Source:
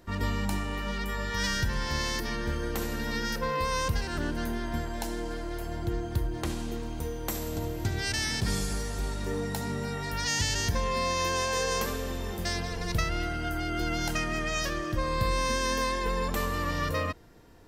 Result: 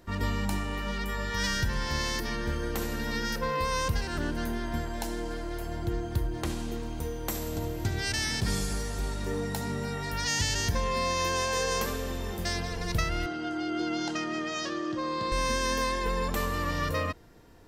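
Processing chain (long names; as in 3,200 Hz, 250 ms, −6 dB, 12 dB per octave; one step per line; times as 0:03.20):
0:13.26–0:15.32: loudspeaker in its box 240–6,500 Hz, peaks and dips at 320 Hz +6 dB, 570 Hz −4 dB, 1,600 Hz −4 dB, 2,300 Hz −7 dB, 5,700 Hz −3 dB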